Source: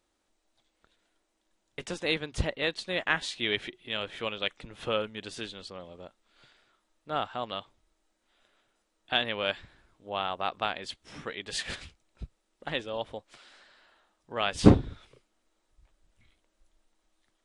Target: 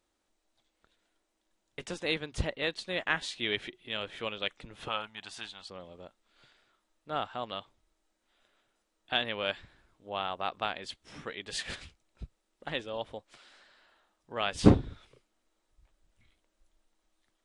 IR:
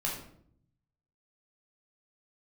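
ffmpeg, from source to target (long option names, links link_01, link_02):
-filter_complex "[0:a]asettb=1/sr,asplit=3[link_01][link_02][link_03];[link_01]atrim=end=4.884[link_04];[link_02]atrim=start=4.88:end=5.7,asetpts=PTS-STARTPTS,afade=type=in:duration=0.004:curve=qsin,afade=type=out:start_time=0.816:duration=0.004:curve=qsin,lowshelf=frequency=610:width_type=q:width=3:gain=-8[link_05];[link_03]atrim=start=5.696[link_06];[link_04][link_05]acrossfade=duration=0.004:curve1=hsin:curve2=qsin[link_07];[link_07][link_06]acrossfade=duration=0.004:curve1=qsin:curve2=hsin,volume=-2.5dB"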